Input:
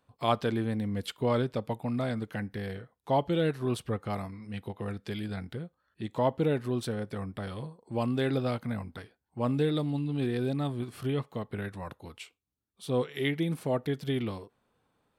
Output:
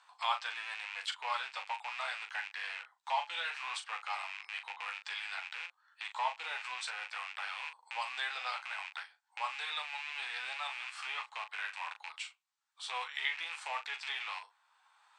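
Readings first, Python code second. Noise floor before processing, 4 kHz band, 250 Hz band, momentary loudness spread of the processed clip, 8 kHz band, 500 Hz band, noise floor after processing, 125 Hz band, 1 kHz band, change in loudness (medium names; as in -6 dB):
-78 dBFS, +3.0 dB, under -40 dB, 8 LU, 0.0 dB, -22.0 dB, -75 dBFS, under -40 dB, -1.0 dB, -6.5 dB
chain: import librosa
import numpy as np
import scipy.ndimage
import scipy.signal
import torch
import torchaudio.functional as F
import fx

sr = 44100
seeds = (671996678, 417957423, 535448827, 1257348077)

y = fx.rattle_buzz(x, sr, strikes_db=-41.0, level_db=-32.0)
y = scipy.signal.sosfilt(scipy.signal.cheby1(4, 1.0, [850.0, 8200.0], 'bandpass', fs=sr, output='sos'), y)
y = fx.room_early_taps(y, sr, ms=(12, 40), db=(-7.0, -9.0))
y = fx.band_squash(y, sr, depth_pct=40)
y = F.gain(torch.from_numpy(y), 1.5).numpy()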